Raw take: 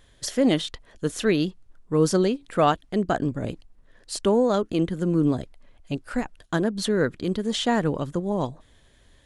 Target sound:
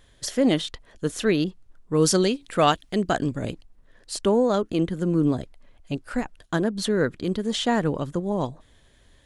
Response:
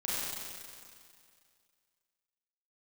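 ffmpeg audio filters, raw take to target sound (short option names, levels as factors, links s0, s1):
-filter_complex "[0:a]asettb=1/sr,asplit=3[s0][s1][s2];[s0]atrim=end=1.444[s3];[s1]atrim=start=1.44:end=3.51,asetpts=PTS-STARTPTS,afade=t=in:d=0.004:c=qsin,afade=t=out:st=2.066:d=0.004:c=qsin,adynamicequalizer=threshold=0.0158:dfrequency=1900:dqfactor=0.7:tfrequency=1900:tqfactor=0.7:attack=5:release=100:ratio=0.375:range=4:mode=boostabove:tftype=highshelf[s4];[s2]atrim=start=3.506[s5];[s3][s4]acrossfade=d=0.004:c1=hsin:c2=qsin[s6];[s6][s5]acrossfade=d=0.004:c1=qsin:c2=hsin"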